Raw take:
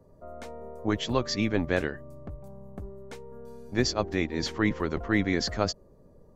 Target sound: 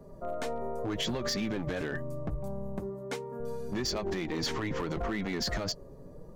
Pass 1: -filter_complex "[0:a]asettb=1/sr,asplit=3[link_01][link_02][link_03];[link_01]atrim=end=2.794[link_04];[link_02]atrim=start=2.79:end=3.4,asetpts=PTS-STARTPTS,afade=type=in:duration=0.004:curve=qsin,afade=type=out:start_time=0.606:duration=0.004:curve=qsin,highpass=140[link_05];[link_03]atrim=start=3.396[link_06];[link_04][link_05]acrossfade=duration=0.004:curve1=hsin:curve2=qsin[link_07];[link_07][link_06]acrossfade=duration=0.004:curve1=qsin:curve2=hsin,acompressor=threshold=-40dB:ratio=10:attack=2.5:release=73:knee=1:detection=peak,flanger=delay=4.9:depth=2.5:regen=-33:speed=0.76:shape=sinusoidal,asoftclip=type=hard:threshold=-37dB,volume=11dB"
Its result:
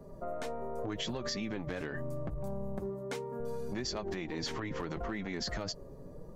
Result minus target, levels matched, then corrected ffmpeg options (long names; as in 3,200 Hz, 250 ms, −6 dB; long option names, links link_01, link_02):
downward compressor: peak gain reduction +5.5 dB
-filter_complex "[0:a]asettb=1/sr,asplit=3[link_01][link_02][link_03];[link_01]atrim=end=2.794[link_04];[link_02]atrim=start=2.79:end=3.4,asetpts=PTS-STARTPTS,afade=type=in:duration=0.004:curve=qsin,afade=type=out:start_time=0.606:duration=0.004:curve=qsin,highpass=140[link_05];[link_03]atrim=start=3.396[link_06];[link_04][link_05]acrossfade=duration=0.004:curve1=hsin:curve2=qsin[link_07];[link_07][link_06]acrossfade=duration=0.004:curve1=qsin:curve2=hsin,acompressor=threshold=-34dB:ratio=10:attack=2.5:release=73:knee=1:detection=peak,flanger=delay=4.9:depth=2.5:regen=-33:speed=0.76:shape=sinusoidal,asoftclip=type=hard:threshold=-37dB,volume=11dB"